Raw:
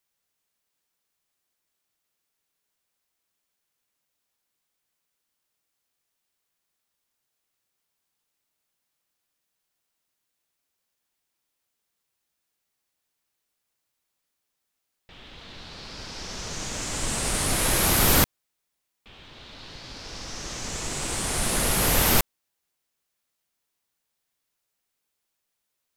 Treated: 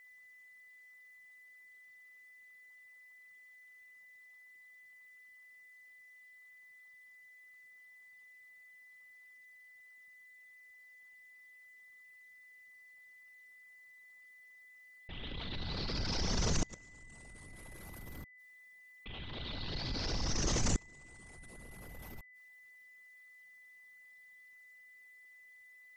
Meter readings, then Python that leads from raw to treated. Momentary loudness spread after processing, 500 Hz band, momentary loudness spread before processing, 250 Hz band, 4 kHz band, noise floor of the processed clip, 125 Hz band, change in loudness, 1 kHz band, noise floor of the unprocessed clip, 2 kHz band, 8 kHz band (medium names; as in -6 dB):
20 LU, -13.0 dB, 21 LU, -10.0 dB, -11.0 dB, -59 dBFS, -8.5 dB, -16.0 dB, -16.0 dB, -80 dBFS, -13.0 dB, -16.0 dB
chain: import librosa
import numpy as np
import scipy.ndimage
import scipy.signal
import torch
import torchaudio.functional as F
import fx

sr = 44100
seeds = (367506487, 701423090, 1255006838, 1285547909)

y = fx.envelope_sharpen(x, sr, power=2.0)
y = fx.gate_flip(y, sr, shuts_db=-24.0, range_db=-32)
y = y + 10.0 ** (-60.0 / 20.0) * np.sin(2.0 * np.pi * 2000.0 * np.arange(len(y)) / sr)
y = y * librosa.db_to_amplitude(4.0)